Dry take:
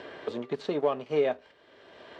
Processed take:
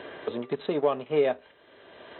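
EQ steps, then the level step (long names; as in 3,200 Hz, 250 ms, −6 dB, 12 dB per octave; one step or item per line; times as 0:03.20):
linear-phase brick-wall low-pass 4,100 Hz
+2.0 dB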